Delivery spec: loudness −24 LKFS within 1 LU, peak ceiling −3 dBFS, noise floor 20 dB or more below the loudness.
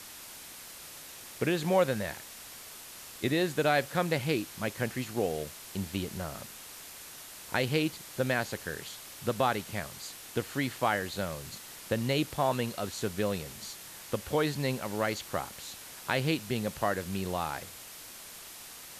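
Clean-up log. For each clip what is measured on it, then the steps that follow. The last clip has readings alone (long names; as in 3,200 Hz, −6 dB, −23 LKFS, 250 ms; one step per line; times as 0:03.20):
background noise floor −47 dBFS; target noise floor −52 dBFS; integrated loudness −32.0 LKFS; sample peak −12.5 dBFS; target loudness −24.0 LKFS
→ broadband denoise 6 dB, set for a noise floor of −47 dBFS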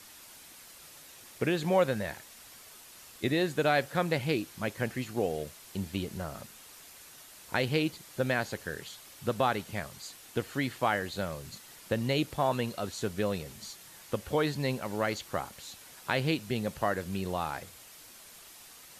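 background noise floor −52 dBFS; integrated loudness −32.0 LKFS; sample peak −12.5 dBFS; target loudness −24.0 LKFS
→ level +8 dB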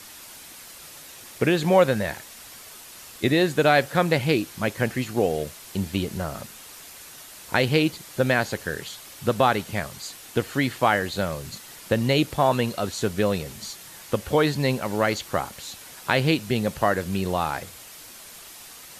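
integrated loudness −24.0 LKFS; sample peak −4.5 dBFS; background noise floor −44 dBFS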